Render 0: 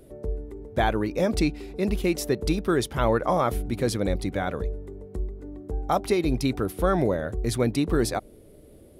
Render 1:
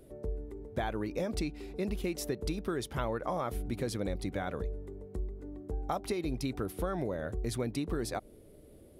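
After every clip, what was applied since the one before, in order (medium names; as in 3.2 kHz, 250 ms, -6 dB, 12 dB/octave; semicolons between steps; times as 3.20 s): compression, threshold -25 dBFS, peak gain reduction 8 dB; trim -5 dB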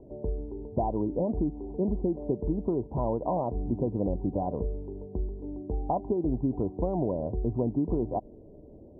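rippled Chebyshev low-pass 1 kHz, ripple 3 dB; trim +7.5 dB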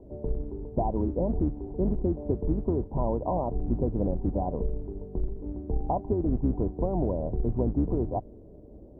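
octave divider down 2 oct, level 0 dB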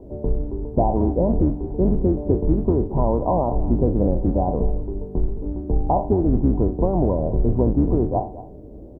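spectral sustain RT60 0.34 s; delay 221 ms -16 dB; trim +7 dB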